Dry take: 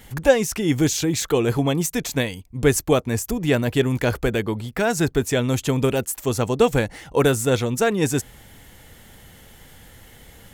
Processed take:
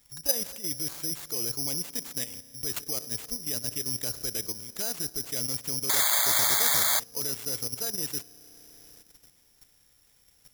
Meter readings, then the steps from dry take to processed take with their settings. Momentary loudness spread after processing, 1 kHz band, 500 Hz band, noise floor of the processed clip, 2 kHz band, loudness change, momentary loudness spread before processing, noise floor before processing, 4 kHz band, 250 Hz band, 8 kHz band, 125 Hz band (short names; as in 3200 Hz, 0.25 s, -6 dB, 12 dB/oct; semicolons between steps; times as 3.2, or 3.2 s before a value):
12 LU, -9.5 dB, -20.5 dB, -63 dBFS, -9.0 dB, -5.5 dB, 6 LU, -48 dBFS, -0.5 dB, -20.5 dB, +0.5 dB, -20.5 dB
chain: spring tank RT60 3.5 s, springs 33 ms, chirp 55 ms, DRR 12.5 dB; level quantiser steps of 11 dB; soft clip -4.5 dBFS, distortion -27 dB; painted sound noise, 5.89–7, 560–2300 Hz -16 dBFS; careless resampling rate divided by 8×, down none, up zero stuff; gain -17 dB